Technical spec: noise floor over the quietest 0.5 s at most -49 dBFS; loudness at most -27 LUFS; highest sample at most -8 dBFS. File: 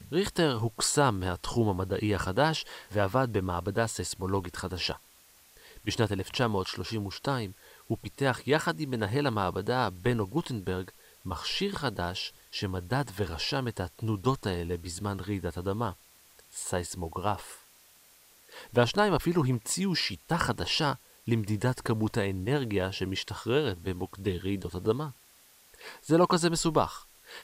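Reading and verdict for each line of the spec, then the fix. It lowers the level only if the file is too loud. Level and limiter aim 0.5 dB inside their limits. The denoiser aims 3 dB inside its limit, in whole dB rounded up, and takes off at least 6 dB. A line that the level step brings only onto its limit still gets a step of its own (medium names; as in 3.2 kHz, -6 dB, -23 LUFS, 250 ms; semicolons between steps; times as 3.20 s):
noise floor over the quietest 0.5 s -59 dBFS: pass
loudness -30.0 LUFS: pass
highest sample -10.5 dBFS: pass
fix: none needed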